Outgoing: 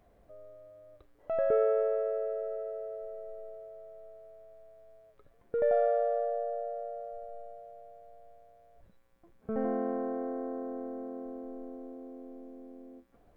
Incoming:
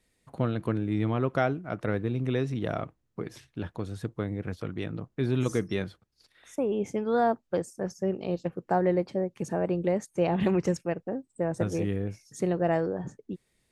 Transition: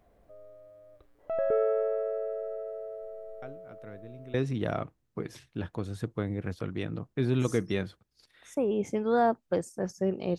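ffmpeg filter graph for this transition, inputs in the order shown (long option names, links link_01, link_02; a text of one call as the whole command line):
ffmpeg -i cue0.wav -i cue1.wav -filter_complex "[1:a]asplit=2[link_01][link_02];[0:a]apad=whole_dur=10.38,atrim=end=10.38,atrim=end=4.342[link_03];[link_02]atrim=start=2.348:end=8.39[link_04];[link_01]atrim=start=1.43:end=2.35,asetpts=PTS-STARTPTS,volume=-17.5dB,afade=type=in:duration=0.004:curve=hsin,afade=type=out:start_time=0.916:duration=0.004:curve=hsin,adelay=3420[link_05];[link_03][link_04]acrossfade=duration=0.004:curve1=hsin:curve2=hsin[link_06];[link_06][link_05]amix=inputs=2:normalize=0" out.wav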